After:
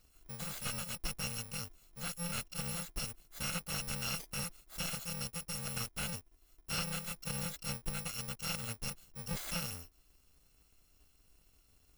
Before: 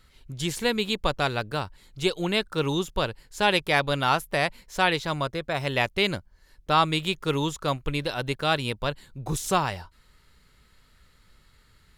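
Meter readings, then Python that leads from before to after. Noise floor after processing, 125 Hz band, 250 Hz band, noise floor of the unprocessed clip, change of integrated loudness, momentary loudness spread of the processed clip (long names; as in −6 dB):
−69 dBFS, −11.5 dB, −15.0 dB, −60 dBFS, −12.5 dB, 6 LU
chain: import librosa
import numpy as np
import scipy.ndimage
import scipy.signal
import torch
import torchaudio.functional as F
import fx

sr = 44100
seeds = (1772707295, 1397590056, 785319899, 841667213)

y = fx.bit_reversed(x, sr, seeds[0], block=128)
y = fx.slew_limit(y, sr, full_power_hz=270.0)
y = F.gain(torch.from_numpy(y), -8.5).numpy()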